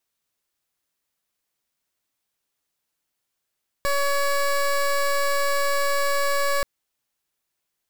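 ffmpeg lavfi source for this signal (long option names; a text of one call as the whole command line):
ffmpeg -f lavfi -i "aevalsrc='0.0841*(2*lt(mod(564*t,1),0.18)-1)':duration=2.78:sample_rate=44100" out.wav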